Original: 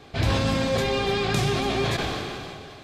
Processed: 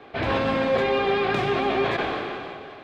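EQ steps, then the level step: three-band isolator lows -14 dB, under 250 Hz, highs -24 dB, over 3 kHz; +4.0 dB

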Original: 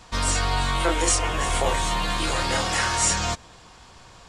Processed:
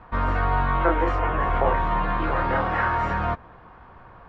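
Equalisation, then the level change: four-pole ladder low-pass 1.9 kHz, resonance 25%; +7.5 dB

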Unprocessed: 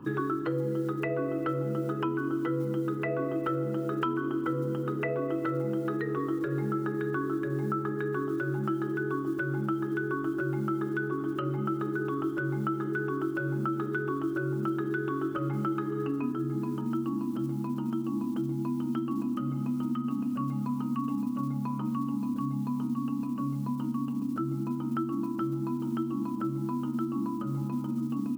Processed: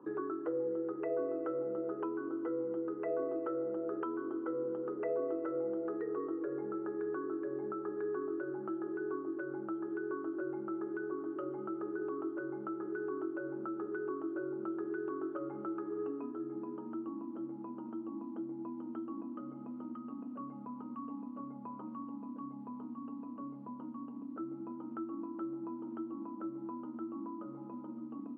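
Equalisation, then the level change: ladder band-pass 590 Hz, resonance 30%; distance through air 190 m; +7.0 dB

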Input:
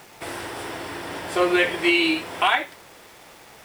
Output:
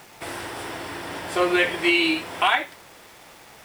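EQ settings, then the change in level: peaking EQ 430 Hz -2 dB 0.79 oct; 0.0 dB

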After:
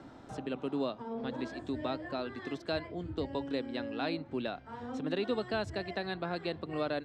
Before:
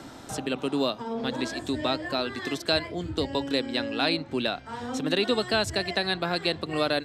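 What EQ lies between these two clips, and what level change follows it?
distance through air 53 m; treble shelf 2.5 kHz -11 dB; -6.5 dB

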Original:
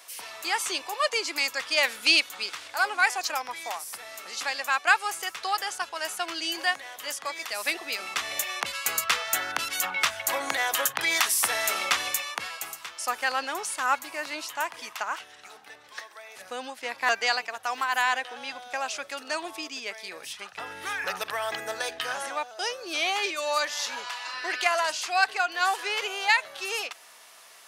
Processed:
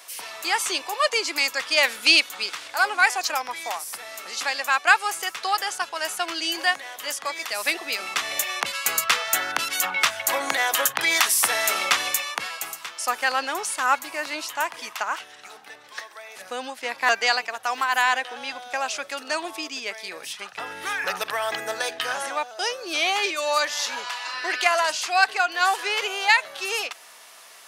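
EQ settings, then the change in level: high-pass 110 Hz 12 dB/octave; +4.0 dB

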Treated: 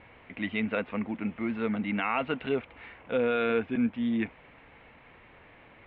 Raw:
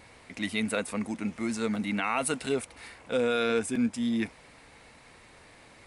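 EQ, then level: steep low-pass 3.2 kHz 48 dB/octave; 0.0 dB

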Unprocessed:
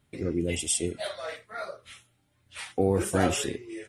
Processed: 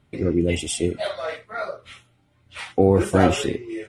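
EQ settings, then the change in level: treble shelf 4.3 kHz -9 dB; treble shelf 9.3 kHz -7 dB; band-stop 1.7 kHz, Q 15; +8.0 dB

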